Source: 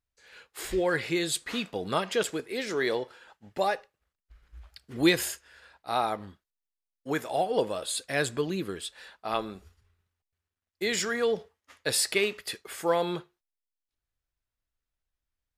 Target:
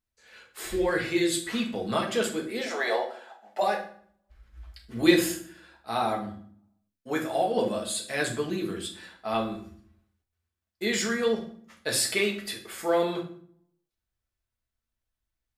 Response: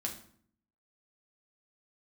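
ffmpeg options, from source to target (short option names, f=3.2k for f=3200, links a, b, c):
-filter_complex "[0:a]asplit=3[a][b][c];[a]afade=t=out:st=2.6:d=0.02[d];[b]highpass=f=700:t=q:w=4.9,afade=t=in:st=2.6:d=0.02,afade=t=out:st=3.61:d=0.02[e];[c]afade=t=in:st=3.61:d=0.02[f];[d][e][f]amix=inputs=3:normalize=0[g];[1:a]atrim=start_sample=2205[h];[g][h]afir=irnorm=-1:irlink=0"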